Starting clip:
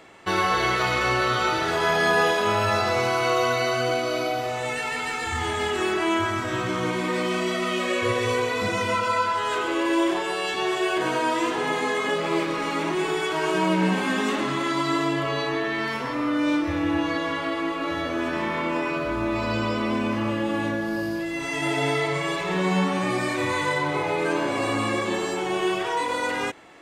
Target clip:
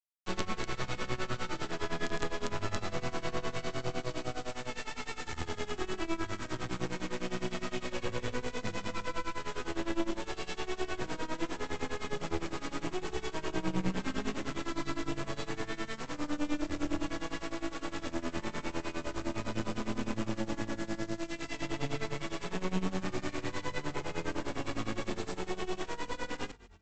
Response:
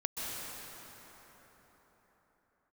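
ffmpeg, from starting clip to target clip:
-filter_complex "[0:a]aresample=16000,acrusher=bits=3:dc=4:mix=0:aa=0.000001,aresample=44100,acrossover=split=360[link_01][link_02];[link_02]acompressor=threshold=-40dB:ratio=2[link_03];[link_01][link_03]amix=inputs=2:normalize=0,asplit=3[link_04][link_05][link_06];[link_05]adelay=165,afreqshift=-43,volume=-23dB[link_07];[link_06]adelay=330,afreqshift=-86,volume=-32.4dB[link_08];[link_04][link_07][link_08]amix=inputs=3:normalize=0,tremolo=f=9.8:d=0.9,areverse,acompressor=mode=upward:threshold=-48dB:ratio=2.5,areverse,bandreject=frequency=50:width_type=h:width=6,bandreject=frequency=100:width_type=h:width=6,bandreject=frequency=150:width_type=h:width=6,bandreject=frequency=200:width_type=h:width=6"

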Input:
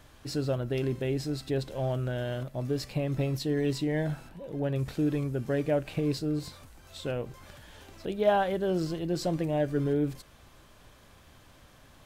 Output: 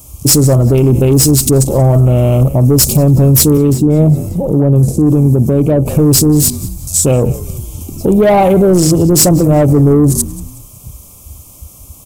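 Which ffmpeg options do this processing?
ffmpeg -i in.wav -filter_complex "[0:a]highpass=frequency=69:poles=1,highshelf=frequency=9700:gain=3.5,bandreject=frequency=161.9:width_type=h:width=4,bandreject=frequency=323.8:width_type=h:width=4,bandreject=frequency=485.7:width_type=h:width=4,bandreject=frequency=647.6:width_type=h:width=4,bandreject=frequency=809.5:width_type=h:width=4,bandreject=frequency=971.4:width_type=h:width=4,bandreject=frequency=1133.3:width_type=h:width=4,bandreject=frequency=1295.2:width_type=h:width=4,bandreject=frequency=1457.1:width_type=h:width=4,bandreject=frequency=1619:width_type=h:width=4,bandreject=frequency=1780.9:width_type=h:width=4,bandreject=frequency=1942.8:width_type=h:width=4,bandreject=frequency=2104.7:width_type=h:width=4,bandreject=frequency=2266.6:width_type=h:width=4,bandreject=frequency=2428.5:width_type=h:width=4,bandreject=frequency=2590.4:width_type=h:width=4,bandreject=frequency=2752.3:width_type=h:width=4,bandreject=frequency=2914.2:width_type=h:width=4,bandreject=frequency=3076.1:width_type=h:width=4,bandreject=frequency=3238:width_type=h:width=4,bandreject=frequency=3399.9:width_type=h:width=4,bandreject=frequency=3561.8:width_type=h:width=4,bandreject=frequency=3723.7:width_type=h:width=4,bandreject=frequency=3885.6:width_type=h:width=4,aexciter=amount=12.5:drive=1.5:freq=5800,afwtdn=0.00794,asuperstop=centerf=1700:order=8:qfactor=2,asoftclip=type=tanh:threshold=-25dB,asplit=4[link_01][link_02][link_03][link_04];[link_02]adelay=184,afreqshift=-58,volume=-21dB[link_05];[link_03]adelay=368,afreqshift=-116,volume=-29dB[link_06];[link_04]adelay=552,afreqshift=-174,volume=-36.9dB[link_07];[link_01][link_05][link_06][link_07]amix=inputs=4:normalize=0,asettb=1/sr,asplit=3[link_08][link_09][link_10];[link_08]atrim=end=3.574[link_11];[link_09]atrim=start=3.57:end=5.86,asetpts=PTS-STARTPTS,afade=type=in:duration=0.004:curve=qsin,afade=type=out:start_time=2.286:duration=0.004:curve=qsin,acrossover=split=96|670[link_12][link_13][link_14];[link_12]acompressor=threshold=-57dB:ratio=4[link_15];[link_13]acompressor=threshold=-33dB:ratio=4[link_16];[link_14]acompressor=threshold=-53dB:ratio=4[link_17];[link_15][link_16][link_17]amix=inputs=3:normalize=0[link_18];[link_10]atrim=start=5.856[link_19];[link_11][link_18]acrossfade=duration=0.004:curve1=hsin:curve2=qsin[link_20];[link_20][link_19]acrossfade=duration=0.004:curve1=qsin:curve2=hsin,lowshelf=frequency=280:gain=10.5,alimiter=level_in=25dB:limit=-1dB:release=50:level=0:latency=1,volume=-1dB" out.wav

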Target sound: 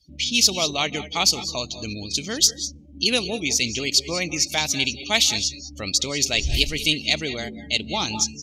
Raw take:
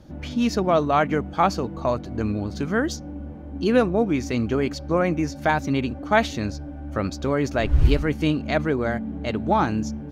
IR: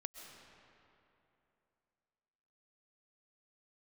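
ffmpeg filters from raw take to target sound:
-filter_complex "[0:a]atempo=1.2,aexciter=amount=9.2:drive=9.5:freq=2400[link_01];[1:a]atrim=start_sample=2205,atrim=end_sample=6174,asetrate=29106,aresample=44100[link_02];[link_01][link_02]afir=irnorm=-1:irlink=0,afftdn=noise_reduction=28:noise_floor=-34,volume=-5dB"

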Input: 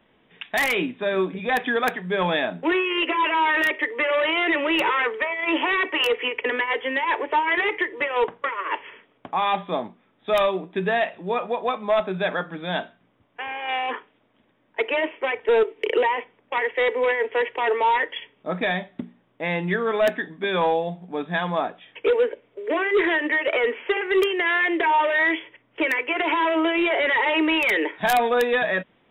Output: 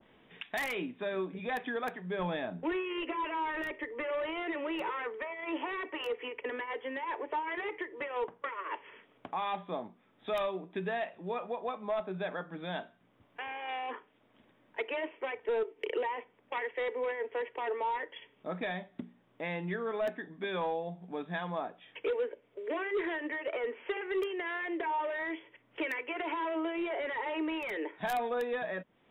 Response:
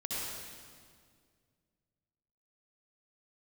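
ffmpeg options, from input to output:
-filter_complex "[0:a]asettb=1/sr,asplit=3[link_01][link_02][link_03];[link_01]atrim=end=2.194[link_04];[link_02]atrim=start=2.19:end=4.43,asetpts=PTS-STARTPTS,afade=type=in:duration=0.004:curve=qsin,afade=type=out:start_time=2.236:duration=0.004:curve=qsin,lowshelf=frequency=140:gain=11.5[link_05];[link_03]atrim=start=4.426[link_06];[link_04][link_05]acrossfade=duration=0.004:curve1=hsin:curve2=qsin[link_07];[link_07][link_06]acrossfade=duration=0.004:curve1=qsin:curve2=hsin,acompressor=threshold=-50dB:ratio=1.5,adynamicequalizer=threshold=0.00447:dfrequency=1500:dqfactor=0.7:tfrequency=1500:tqfactor=0.7:attack=5:release=100:ratio=0.375:range=4:mode=cutabove:tftype=highshelf,volume=-1dB"

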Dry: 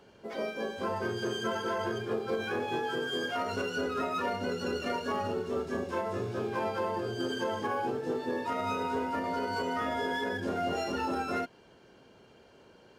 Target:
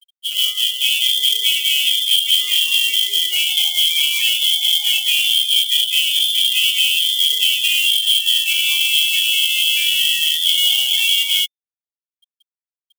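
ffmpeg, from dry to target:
ffmpeg -i in.wav -af "afftfilt=real='re*gte(hypot(re,im),0.0141)':imag='im*gte(hypot(re,im),0.0141)':win_size=1024:overlap=0.75,adynamicequalizer=threshold=0.00224:dfrequency=1600:dqfactor=7.6:tfrequency=1600:tqfactor=7.6:attack=5:release=100:ratio=0.375:range=2.5:mode=cutabove:tftype=bell,lowpass=frequency=3100:width_type=q:width=0.5098,lowpass=frequency=3100:width_type=q:width=0.6013,lowpass=frequency=3100:width_type=q:width=0.9,lowpass=frequency=3100:width_type=q:width=2.563,afreqshift=-3600,acrusher=bits=2:mode=log:mix=0:aa=0.000001,aexciter=amount=15.6:drive=4.4:freq=2400,volume=-5.5dB" out.wav

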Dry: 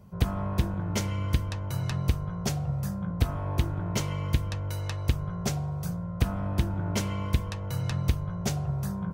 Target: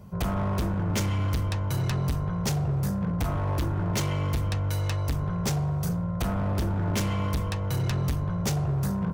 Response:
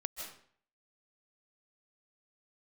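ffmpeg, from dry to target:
-af "asoftclip=type=hard:threshold=-28.5dB,volume=5.5dB"

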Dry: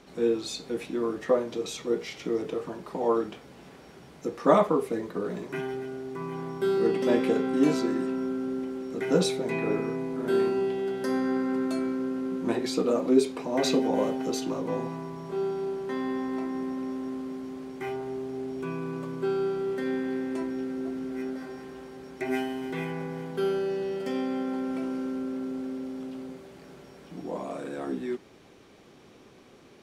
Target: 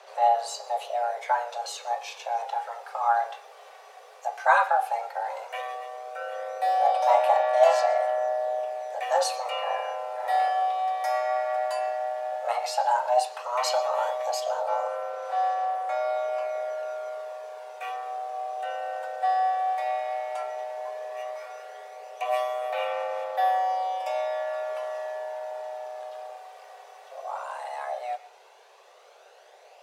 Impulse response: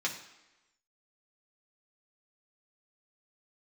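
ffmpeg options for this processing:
-filter_complex "[0:a]aphaser=in_gain=1:out_gain=1:delay=2.6:decay=0.36:speed=0.13:type=sinusoidal,afreqshift=360,asplit=2[link_01][link_02];[1:a]atrim=start_sample=2205,adelay=113[link_03];[link_02][link_03]afir=irnorm=-1:irlink=0,volume=-23dB[link_04];[link_01][link_04]amix=inputs=2:normalize=0"

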